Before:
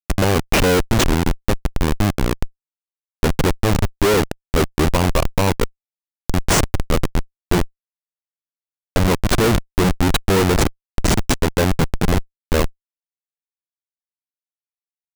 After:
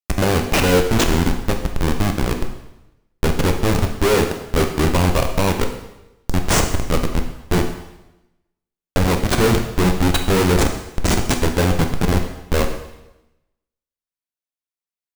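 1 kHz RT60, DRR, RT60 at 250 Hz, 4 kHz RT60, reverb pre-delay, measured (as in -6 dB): 0.95 s, 4.0 dB, 0.95 s, 0.90 s, 6 ms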